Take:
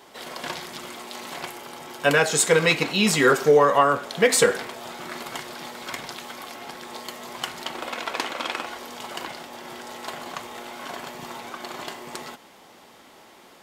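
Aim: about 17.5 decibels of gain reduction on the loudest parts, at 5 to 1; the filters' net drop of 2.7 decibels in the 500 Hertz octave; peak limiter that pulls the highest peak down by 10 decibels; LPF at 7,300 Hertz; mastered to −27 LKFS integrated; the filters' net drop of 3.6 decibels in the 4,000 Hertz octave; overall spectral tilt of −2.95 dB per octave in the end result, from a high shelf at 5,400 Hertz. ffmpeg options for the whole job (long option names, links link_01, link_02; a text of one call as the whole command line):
ffmpeg -i in.wav -af "lowpass=7300,equalizer=frequency=500:width_type=o:gain=-3,equalizer=frequency=4000:width_type=o:gain=-5.5,highshelf=frequency=5400:gain=3,acompressor=threshold=-35dB:ratio=5,volume=13dB,alimiter=limit=-16dB:level=0:latency=1" out.wav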